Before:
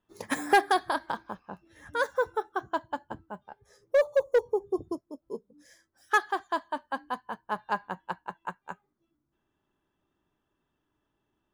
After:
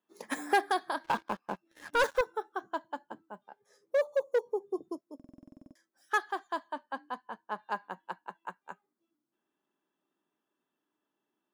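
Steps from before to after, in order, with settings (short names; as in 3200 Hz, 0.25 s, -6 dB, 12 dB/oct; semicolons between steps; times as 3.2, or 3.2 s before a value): HPF 200 Hz 24 dB/oct; 1.04–2.21 sample leveller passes 3; 6.73–7.63 high shelf 10000 Hz -11 dB; stuck buffer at 5.15, samples 2048, times 12; gain -5 dB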